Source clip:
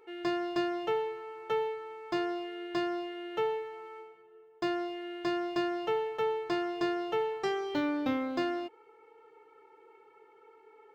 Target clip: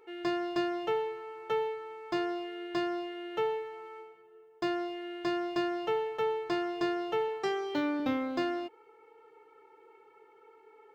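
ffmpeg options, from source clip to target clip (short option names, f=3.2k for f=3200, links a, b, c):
-filter_complex "[0:a]asettb=1/sr,asplit=3[a][b][c];[a]atrim=end=7.284[d];[b]atrim=start=7.28:end=8,asetpts=PTS-STARTPTS,afade=t=in:d=0.004:c=qsin,afade=t=out:st=0.716:d=0.004:c=qsin,highpass=130[e];[c]atrim=start=7.996[f];[d][e]acrossfade=d=0.004:c1=hsin:c2=qsin[g];[g][f]acrossfade=d=0.004:c1=qsin:c2=hsin"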